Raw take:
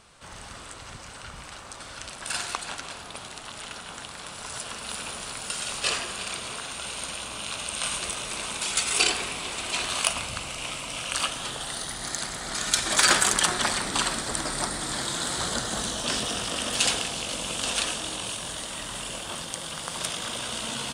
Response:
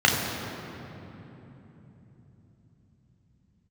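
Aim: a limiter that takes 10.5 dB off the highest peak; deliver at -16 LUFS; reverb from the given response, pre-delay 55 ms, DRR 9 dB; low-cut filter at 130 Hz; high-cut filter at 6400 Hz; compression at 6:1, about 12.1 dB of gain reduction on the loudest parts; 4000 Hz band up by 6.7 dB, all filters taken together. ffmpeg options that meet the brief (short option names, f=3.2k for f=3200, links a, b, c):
-filter_complex "[0:a]highpass=130,lowpass=6.4k,equalizer=f=4k:t=o:g=9,acompressor=threshold=-26dB:ratio=6,alimiter=limit=-20dB:level=0:latency=1,asplit=2[a][b];[1:a]atrim=start_sample=2205,adelay=55[c];[b][c]afir=irnorm=-1:irlink=0,volume=-28.5dB[d];[a][d]amix=inputs=2:normalize=0,volume=14dB"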